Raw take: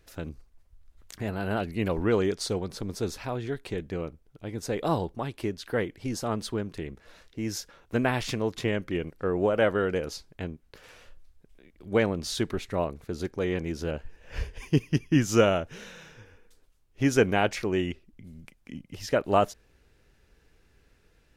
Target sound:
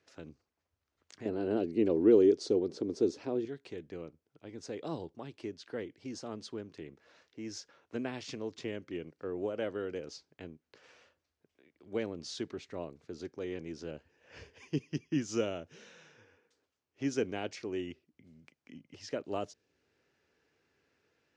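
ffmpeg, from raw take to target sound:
ffmpeg -i in.wav -filter_complex "[0:a]asettb=1/sr,asplit=3[link_01][link_02][link_03];[link_01]atrim=end=1.254[link_04];[link_02]atrim=start=1.25:end=3.45,asetpts=PTS-STARTPTS,afade=type=in:duration=0.004:curve=qsin,afade=type=out:start_time=2.196:duration=0.004:curve=qsin,equalizer=frequency=360:width=0.8:gain=14.5[link_05];[link_03]atrim=start=3.446[link_06];[link_04][link_05]acrossfade=duration=0.004:curve1=hsin:curve2=qsin[link_07];[link_07][link_06]acrossfade=duration=0.004:curve1=qsin:curve2=hsin,acrossover=split=470|3000[link_08][link_09][link_10];[link_09]acompressor=threshold=-55dB:ratio=1.5[link_11];[link_08][link_11][link_10]amix=inputs=3:normalize=0,highpass=frequency=110:width=0.5412,highpass=frequency=110:width=1.3066,equalizer=frequency=120:width_type=q:width=4:gain=-10,equalizer=frequency=190:width_type=q:width=4:gain=-9,equalizer=frequency=3700:width_type=q:width=4:gain=-3,lowpass=frequency=6600:width=0.5412,lowpass=frequency=6600:width=1.3066,volume=-7dB" out.wav

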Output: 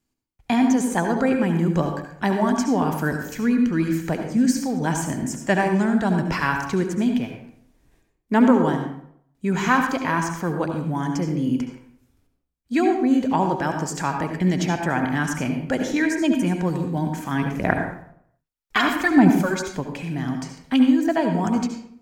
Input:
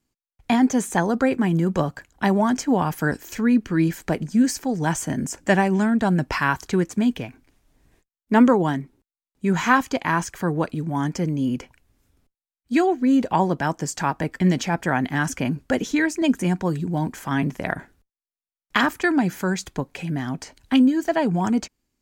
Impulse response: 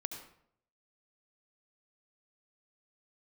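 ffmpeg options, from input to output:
-filter_complex "[0:a]asplit=3[link_01][link_02][link_03];[link_01]afade=type=out:start_time=17.41:duration=0.02[link_04];[link_02]aphaser=in_gain=1:out_gain=1:delay=2.9:decay=0.63:speed=1.3:type=sinusoidal,afade=type=in:start_time=17.41:duration=0.02,afade=type=out:start_time=19.58:duration=0.02[link_05];[link_03]afade=type=in:start_time=19.58:duration=0.02[link_06];[link_04][link_05][link_06]amix=inputs=3:normalize=0[link_07];[1:a]atrim=start_sample=2205[link_08];[link_07][link_08]afir=irnorm=-1:irlink=0"

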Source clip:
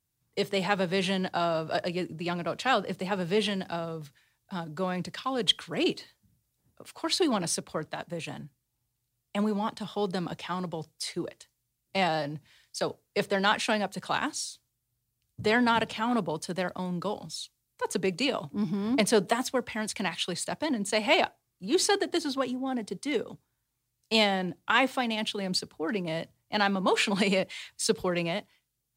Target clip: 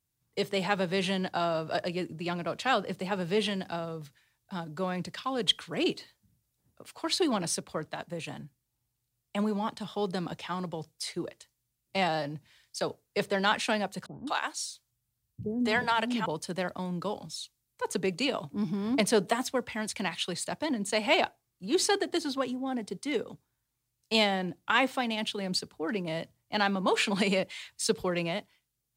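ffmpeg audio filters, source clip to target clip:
ffmpeg -i in.wav -filter_complex "[0:a]asettb=1/sr,asplit=3[link_01][link_02][link_03];[link_01]atrim=end=14.064[link_04];[link_02]atrim=start=14.06:end=16.26,asetpts=PTS-STARTPTS,afade=type=in:duration=0.004:curve=qsin,afade=type=out:start_time=2.196:duration=0.004:curve=qsin,acrossover=split=390[link_05][link_06];[link_06]adelay=210[link_07];[link_05][link_07]amix=inputs=2:normalize=0,atrim=end_sample=97020[link_08];[link_03]atrim=start=16.256[link_09];[link_04][link_08]acrossfade=duration=0.004:curve1=hsin:curve2=qsin[link_10];[link_10][link_09]acrossfade=duration=0.004:curve1=qsin:curve2=hsin,volume=-1.5dB" out.wav

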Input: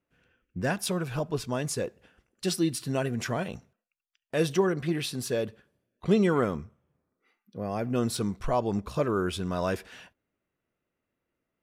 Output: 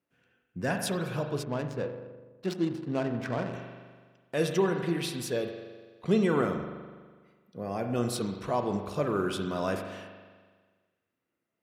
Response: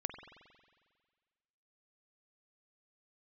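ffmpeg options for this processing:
-filter_complex "[1:a]atrim=start_sample=2205,asetrate=48510,aresample=44100[link_01];[0:a][link_01]afir=irnorm=-1:irlink=0,asplit=3[link_02][link_03][link_04];[link_02]afade=type=out:start_time=1.42:duration=0.02[link_05];[link_03]adynamicsmooth=sensitivity=5.5:basefreq=690,afade=type=in:start_time=1.42:duration=0.02,afade=type=out:start_time=3.52:duration=0.02[link_06];[link_04]afade=type=in:start_time=3.52:duration=0.02[link_07];[link_05][link_06][link_07]amix=inputs=3:normalize=0,highpass=110"

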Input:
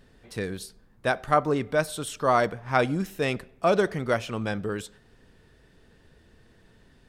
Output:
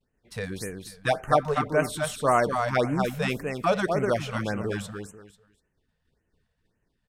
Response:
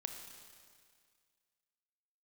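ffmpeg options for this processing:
-filter_complex "[0:a]agate=range=-33dB:threshold=-44dB:ratio=3:detection=peak,asettb=1/sr,asplit=3[link_01][link_02][link_03];[link_01]atrim=end=0.604[link_04];[link_02]atrim=start=0.6:end=1.21,asetpts=PTS-STARTPTS,afade=type=in:duration=0.004:curve=qsin,afade=type=out:start_time=0.606:duration=0.004:curve=qsin,aecho=1:1:6.4:0.82,atrim=end_sample=26901[link_05];[link_03]atrim=start=1.206[link_06];[link_04][link_05]acrossfade=duration=0.004:curve1=hsin:curve2=qsin[link_07];[link_07][link_06]acrossfade=duration=0.004:curve1=qsin:curve2=hsin,aecho=1:1:246|492|738:0.562|0.124|0.0272,afftfilt=real='re*(1-between(b*sr/1024,290*pow(4400/290,0.5+0.5*sin(2*PI*1.8*pts/sr))/1.41,290*pow(4400/290,0.5+0.5*sin(2*PI*1.8*pts/sr))*1.41))':imag='im*(1-between(b*sr/1024,290*pow(4400/290,0.5+0.5*sin(2*PI*1.8*pts/sr))/1.41,290*pow(4400/290,0.5+0.5*sin(2*PI*1.8*pts/sr))*1.41))':win_size=1024:overlap=0.75"

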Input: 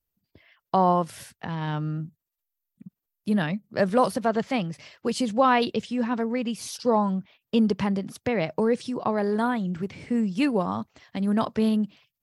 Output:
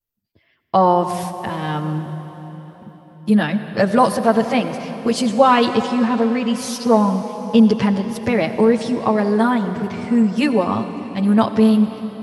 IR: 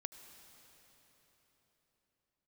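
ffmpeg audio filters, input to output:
-filter_complex "[0:a]agate=range=-10dB:threshold=-45dB:ratio=16:detection=peak,asplit=2[link_01][link_02];[1:a]atrim=start_sample=2205,adelay=9[link_03];[link_02][link_03]afir=irnorm=-1:irlink=0,volume=9dB[link_04];[link_01][link_04]amix=inputs=2:normalize=0,volume=1dB"

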